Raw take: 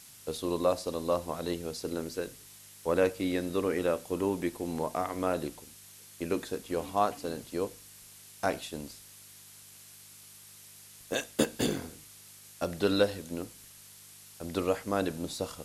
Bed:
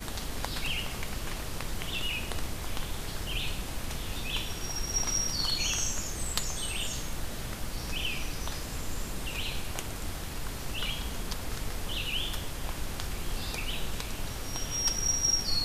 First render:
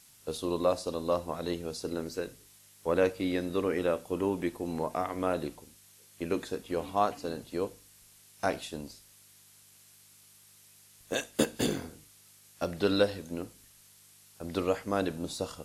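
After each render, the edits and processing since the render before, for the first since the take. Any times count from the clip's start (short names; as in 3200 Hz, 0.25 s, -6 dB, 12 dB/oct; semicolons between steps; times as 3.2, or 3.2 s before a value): noise print and reduce 6 dB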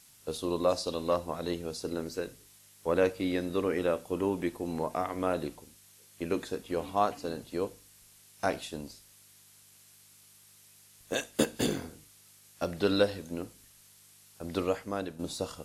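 0.68–1.15 bell 7000 Hz -> 1700 Hz +8 dB; 14.6–15.19 fade out, to -9.5 dB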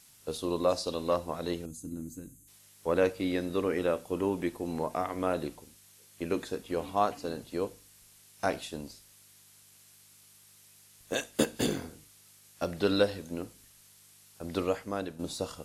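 1.65–2.48 spectral gain 340–6100 Hz -20 dB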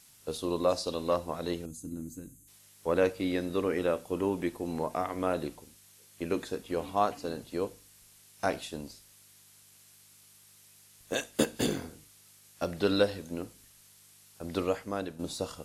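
nothing audible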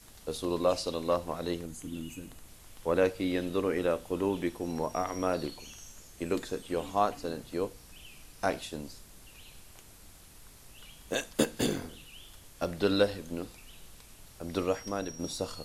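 add bed -19 dB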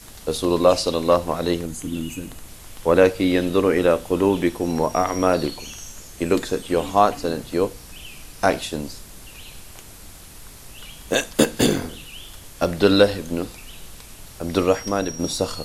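gain +11.5 dB; limiter -2 dBFS, peak gain reduction 2 dB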